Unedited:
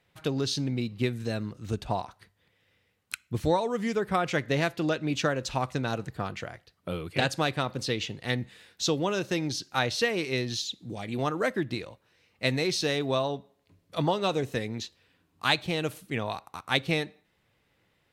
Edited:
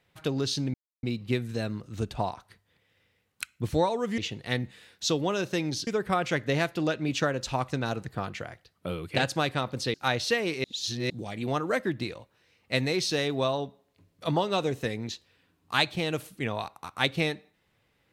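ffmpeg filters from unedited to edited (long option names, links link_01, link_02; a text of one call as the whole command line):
ffmpeg -i in.wav -filter_complex "[0:a]asplit=7[link_01][link_02][link_03][link_04][link_05][link_06][link_07];[link_01]atrim=end=0.74,asetpts=PTS-STARTPTS,afade=type=out:start_time=0.736:duration=0.004:curve=hsin,apad=pad_dur=0.29[link_08];[link_02]atrim=start=0.74:end=3.892,asetpts=PTS-STARTPTS,afade=type=in:duration=0.004:curve=hsin[link_09];[link_03]atrim=start=7.958:end=9.652[link_10];[link_04]atrim=start=3.888:end=7.962[link_11];[link_05]atrim=start=9.648:end=10.352[link_12];[link_06]atrim=start=10.348:end=10.812,asetpts=PTS-STARTPTS,areverse[link_13];[link_07]atrim=start=10.808[link_14];[link_08][link_09]concat=n=2:v=0:a=1[link_15];[link_15][link_10]acrossfade=duration=0.004:curve1=hsin:curve2=hsin[link_16];[link_16][link_11]acrossfade=duration=0.004:curve1=hsin:curve2=hsin[link_17];[link_17][link_12]acrossfade=duration=0.004:curve1=hsin:curve2=hsin[link_18];[link_18][link_13]acrossfade=duration=0.004:curve1=hsin:curve2=hsin[link_19];[link_19][link_14]acrossfade=duration=0.004:curve1=hsin:curve2=hsin" out.wav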